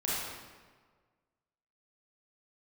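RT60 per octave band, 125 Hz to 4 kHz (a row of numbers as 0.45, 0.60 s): 1.7, 1.5, 1.6, 1.5, 1.3, 1.0 s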